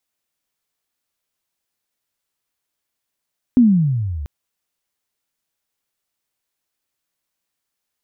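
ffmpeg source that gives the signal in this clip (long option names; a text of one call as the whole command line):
ffmpeg -f lavfi -i "aevalsrc='pow(10,(-6.5-18*t/0.69)/20)*sin(2*PI*260*0.69/log(67/260)*(exp(log(67/260)*t/0.69)-1))':duration=0.69:sample_rate=44100" out.wav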